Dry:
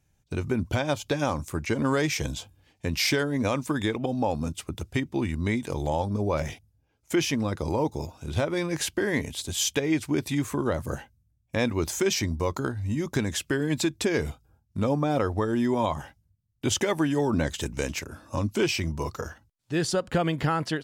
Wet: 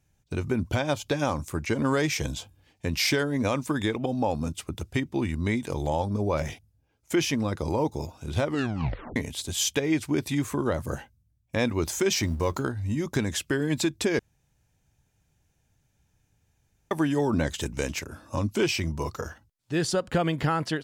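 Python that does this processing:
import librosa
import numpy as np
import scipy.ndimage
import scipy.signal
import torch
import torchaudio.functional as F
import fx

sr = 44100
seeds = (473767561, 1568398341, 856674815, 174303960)

y = fx.law_mismatch(x, sr, coded='mu', at=(12.1, 12.61), fade=0.02)
y = fx.edit(y, sr, fx.tape_stop(start_s=8.44, length_s=0.72),
    fx.room_tone_fill(start_s=14.19, length_s=2.72), tone=tone)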